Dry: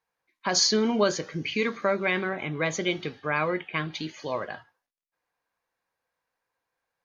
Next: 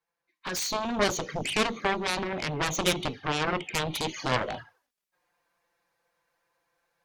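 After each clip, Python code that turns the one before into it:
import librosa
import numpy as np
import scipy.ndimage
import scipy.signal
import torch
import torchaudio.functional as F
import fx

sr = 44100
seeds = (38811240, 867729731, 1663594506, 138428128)

y = fx.rider(x, sr, range_db=5, speed_s=0.5)
y = fx.env_flanger(y, sr, rest_ms=5.9, full_db=-26.0)
y = fx.cheby_harmonics(y, sr, harmonics=(7,), levels_db=(-8,), full_scale_db=-14.0)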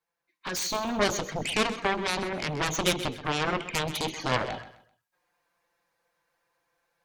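y = fx.echo_feedback(x, sr, ms=129, feedback_pct=30, wet_db=-14.0)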